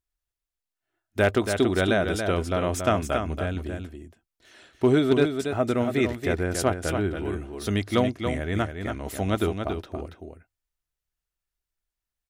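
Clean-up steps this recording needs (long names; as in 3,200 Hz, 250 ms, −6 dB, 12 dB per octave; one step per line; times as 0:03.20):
clipped peaks rebuilt −11 dBFS
echo removal 280 ms −6.5 dB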